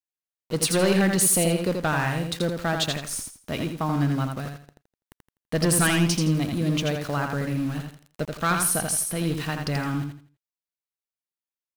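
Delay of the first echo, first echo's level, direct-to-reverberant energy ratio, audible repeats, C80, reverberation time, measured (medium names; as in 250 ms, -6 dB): 83 ms, -5.0 dB, no reverb, 3, no reverb, no reverb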